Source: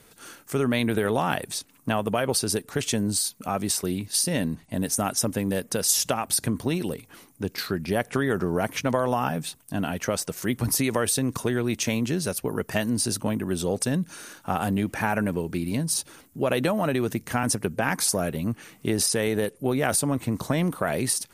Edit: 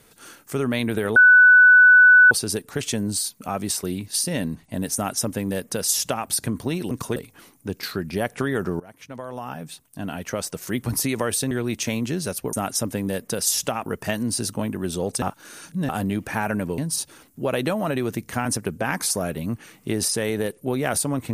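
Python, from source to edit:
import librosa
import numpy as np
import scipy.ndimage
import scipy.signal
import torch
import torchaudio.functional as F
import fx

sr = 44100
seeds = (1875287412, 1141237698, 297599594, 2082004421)

y = fx.edit(x, sr, fx.bleep(start_s=1.16, length_s=1.15, hz=1490.0, db=-8.0),
    fx.duplicate(start_s=4.95, length_s=1.33, to_s=12.53),
    fx.fade_in_from(start_s=8.55, length_s=1.88, floor_db=-23.5),
    fx.move(start_s=11.26, length_s=0.25, to_s=6.91),
    fx.reverse_span(start_s=13.89, length_s=0.67),
    fx.cut(start_s=15.45, length_s=0.31), tone=tone)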